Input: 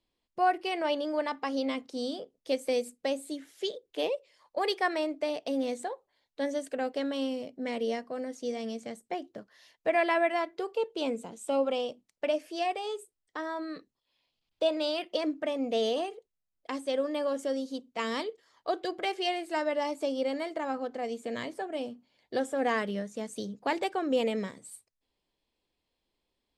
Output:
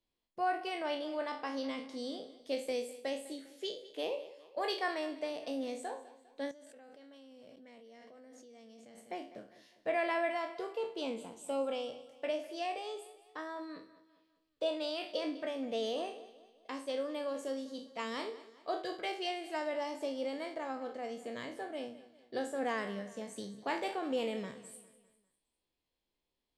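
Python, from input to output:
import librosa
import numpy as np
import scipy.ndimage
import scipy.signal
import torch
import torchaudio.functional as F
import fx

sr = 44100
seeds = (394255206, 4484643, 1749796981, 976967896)

y = fx.spec_trails(x, sr, decay_s=0.4)
y = fx.echo_feedback(y, sr, ms=201, feedback_pct=44, wet_db=-17.0)
y = fx.level_steps(y, sr, step_db=24, at=(6.51, 8.98))
y = y * 10.0 ** (-7.5 / 20.0)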